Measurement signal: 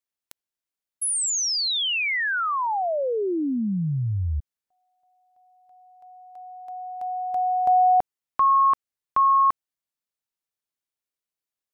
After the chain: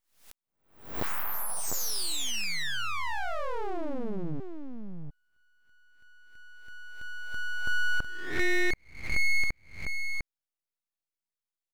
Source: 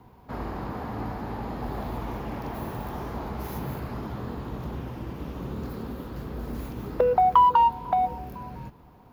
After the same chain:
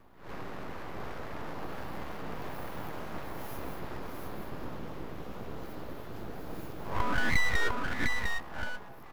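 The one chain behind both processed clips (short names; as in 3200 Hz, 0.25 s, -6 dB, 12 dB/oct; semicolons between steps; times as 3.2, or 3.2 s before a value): spectral swells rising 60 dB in 0.51 s; echo 0.702 s -4 dB; full-wave rectifier; gain -6.5 dB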